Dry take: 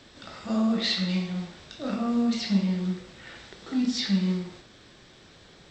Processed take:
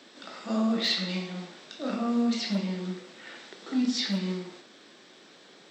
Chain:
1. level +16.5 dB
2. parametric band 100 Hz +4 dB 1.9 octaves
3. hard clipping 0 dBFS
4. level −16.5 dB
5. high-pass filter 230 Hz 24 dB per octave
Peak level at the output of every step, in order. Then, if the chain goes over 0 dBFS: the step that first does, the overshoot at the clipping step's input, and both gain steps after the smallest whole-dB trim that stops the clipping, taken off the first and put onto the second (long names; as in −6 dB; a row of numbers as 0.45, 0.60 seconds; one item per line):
+3.0, +5.0, 0.0, −16.5, −14.5 dBFS
step 1, 5.0 dB
step 1 +11.5 dB, step 4 −11.5 dB